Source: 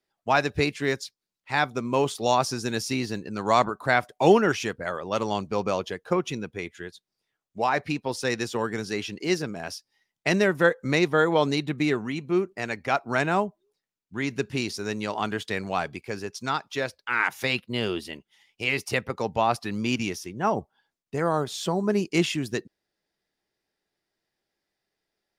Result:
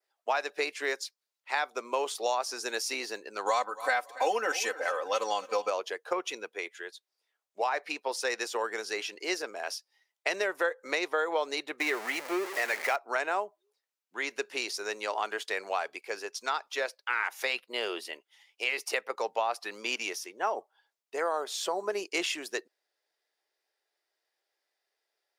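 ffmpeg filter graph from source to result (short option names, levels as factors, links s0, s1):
-filter_complex "[0:a]asettb=1/sr,asplit=3[s0][s1][s2];[s0]atrim=end=3.464[s3];[s1]atrim=start=3.46:end=5.7,asetpts=PTS-STARTPTS,afade=t=in:d=0.004:c=qsin,afade=t=out:st=2.236:d=0.004:c=qsin,highshelf=f=6200:g=8,aecho=1:1:3.9:0.86,atrim=end_sample=98784,aecho=1:1:279|558|837:0.0794|0.0334|0.014,atrim=end_sample=98784[s4];[s2]atrim=start=5.696[s5];[s3][s4]acrossfade=d=0.004:c1=hsin:c2=qsin[s6];[s6][s5]acrossfade=d=0.004:c1=qsin:c2=hsin,asettb=1/sr,asplit=3[s7][s8][s9];[s7]atrim=end=11.804[s10];[s8]atrim=start=11.8:end=12.96,asetpts=PTS-STARTPTS,afade=t=in:d=0.004:c=qsin,afade=t=out:st=1.156:d=0.004:c=qsin,aeval=exprs='val(0)+0.5*0.0355*sgn(val(0))':c=same,equalizer=f=2000:w=4:g=6[s11];[s9]atrim=start=12.956[s12];[s10][s11]acrossfade=d=0.004:c1=hsin:c2=qsin[s13];[s13][s12]acrossfade=d=0.004:c1=qsin:c2=hsin,highpass=f=450:w=0.5412,highpass=f=450:w=1.3066,adynamicequalizer=threshold=0.00447:dfrequency=3400:dqfactor=2.7:tfrequency=3400:tqfactor=2.7:attack=5:release=100:ratio=0.375:range=2:mode=cutabove:tftype=bell,acompressor=threshold=0.0501:ratio=4"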